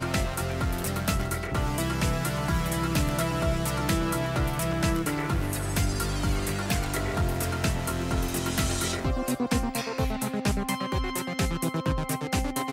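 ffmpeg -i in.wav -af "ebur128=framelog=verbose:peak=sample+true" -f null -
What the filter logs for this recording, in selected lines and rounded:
Integrated loudness:
  I:         -28.1 LUFS
  Threshold: -38.1 LUFS
Loudness range:
  LRA:         1.4 LU
  Threshold: -47.9 LUFS
  LRA low:   -28.6 LUFS
  LRA high:  -27.2 LUFS
Sample peak:
  Peak:      -11.2 dBFS
True peak:
  Peak:      -10.6 dBFS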